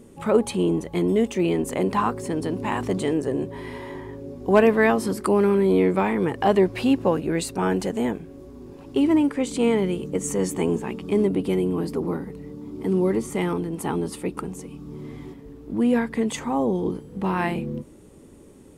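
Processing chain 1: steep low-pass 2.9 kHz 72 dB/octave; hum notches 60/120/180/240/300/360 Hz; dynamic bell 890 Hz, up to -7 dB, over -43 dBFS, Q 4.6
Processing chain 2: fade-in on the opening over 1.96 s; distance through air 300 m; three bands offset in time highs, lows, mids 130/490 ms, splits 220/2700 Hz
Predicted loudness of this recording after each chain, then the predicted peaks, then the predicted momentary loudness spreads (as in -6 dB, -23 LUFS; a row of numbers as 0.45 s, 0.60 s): -24.0 LUFS, -26.0 LUFS; -6.5 dBFS, -6.0 dBFS; 16 LU, 15 LU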